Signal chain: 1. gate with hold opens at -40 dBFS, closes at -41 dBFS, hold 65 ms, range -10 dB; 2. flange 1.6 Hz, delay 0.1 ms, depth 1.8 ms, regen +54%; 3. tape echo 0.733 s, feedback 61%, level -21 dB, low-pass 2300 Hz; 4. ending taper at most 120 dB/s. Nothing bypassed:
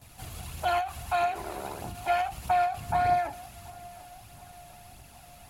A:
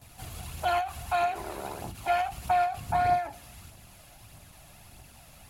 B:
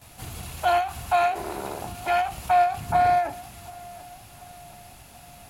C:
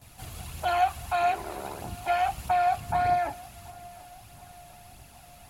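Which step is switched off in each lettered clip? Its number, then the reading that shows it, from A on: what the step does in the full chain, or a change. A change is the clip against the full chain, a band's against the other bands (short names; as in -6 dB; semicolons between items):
3, momentary loudness spread change -6 LU; 2, loudness change +5.0 LU; 4, momentary loudness spread change -2 LU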